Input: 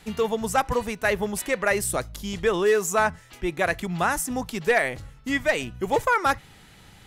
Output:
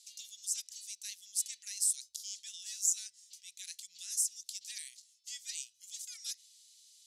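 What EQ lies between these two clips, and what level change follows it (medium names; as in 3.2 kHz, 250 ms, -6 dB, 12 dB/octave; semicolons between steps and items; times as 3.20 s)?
inverse Chebyshev high-pass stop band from 1.2 kHz, stop band 70 dB; distance through air 82 m; treble shelf 10 kHz +6.5 dB; +6.5 dB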